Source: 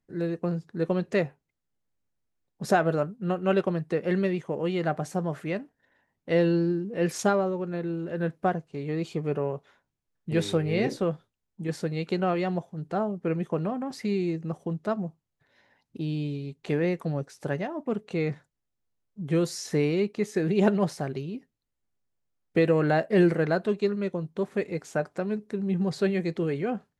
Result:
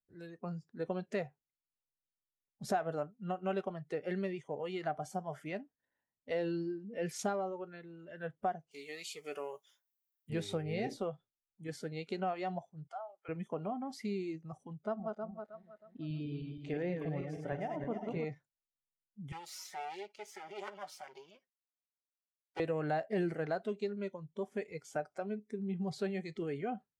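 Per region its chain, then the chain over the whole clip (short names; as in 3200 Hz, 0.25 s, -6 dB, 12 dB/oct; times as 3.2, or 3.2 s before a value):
8.71–10.3 tilt +4.5 dB/oct + doubler 17 ms -14 dB
12.87–13.29 HPF 660 Hz 24 dB/oct + compressor 3:1, threshold -37 dBFS
14.84–18.25 regenerating reverse delay 0.158 s, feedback 70%, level -4.5 dB + high shelf 5000 Hz -12 dB
19.32–22.6 minimum comb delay 5.4 ms + weighting filter A + compressor 2:1, threshold -36 dBFS
whole clip: spectral noise reduction 13 dB; dynamic EQ 730 Hz, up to +7 dB, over -46 dBFS, Q 4.3; compressor 2:1, threshold -27 dBFS; gain -7.5 dB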